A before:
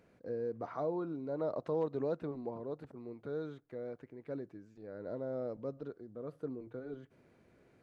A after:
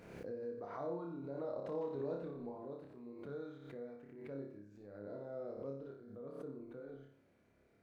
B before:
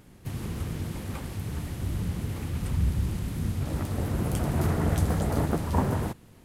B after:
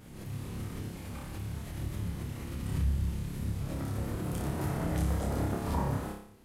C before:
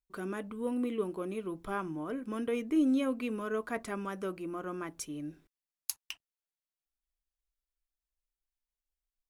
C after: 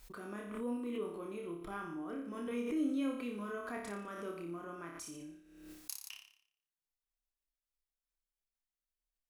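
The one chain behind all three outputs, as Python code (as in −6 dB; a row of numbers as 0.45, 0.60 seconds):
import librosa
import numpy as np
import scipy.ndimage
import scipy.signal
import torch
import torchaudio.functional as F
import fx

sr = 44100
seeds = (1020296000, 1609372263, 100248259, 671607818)

y = fx.room_flutter(x, sr, wall_m=5.0, rt60_s=0.6)
y = fx.pre_swell(y, sr, db_per_s=51.0)
y = F.gain(torch.from_numpy(y), -9.0).numpy()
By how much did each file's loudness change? −5.5, −5.5, −6.0 LU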